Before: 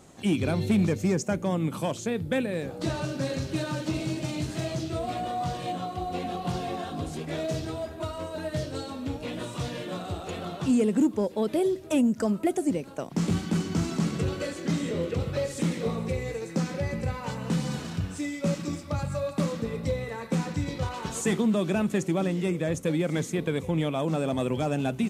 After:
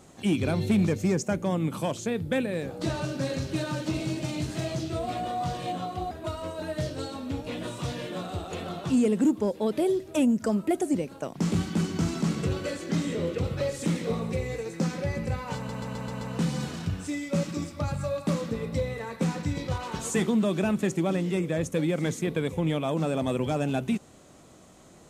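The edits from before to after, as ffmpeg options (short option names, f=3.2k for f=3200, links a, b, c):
-filter_complex "[0:a]asplit=7[a][b][c][d][e][f][g];[a]atrim=end=6.112[h];[b]atrim=start=7.868:end=17.452[i];[c]atrim=start=17.318:end=17.452[j];[d]atrim=start=17.318:end=17.452[k];[e]atrim=start=17.318:end=17.452[l];[f]atrim=start=17.318:end=17.452[m];[g]atrim=start=17.318[n];[h][i]acrossfade=d=0.004:c1=hsin:c2=hsin[o];[o][j]acrossfade=d=0.004:c1=hsin:c2=hsin[p];[p][k]acrossfade=d=0.004:c1=hsin:c2=hsin[q];[q][l]acrossfade=d=0.004:c1=hsin:c2=hsin[r];[r][m]acrossfade=d=0.004:c1=hsin:c2=hsin[s];[s][n]acrossfade=d=0.004:c1=hsin:c2=hsin"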